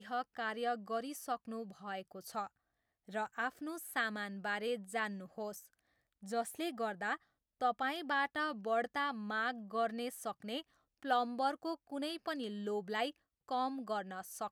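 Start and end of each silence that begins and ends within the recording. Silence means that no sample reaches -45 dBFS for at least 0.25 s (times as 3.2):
2.47–3.09
5.6–6.23
7.16–7.61
10.61–11.03
13.1–13.49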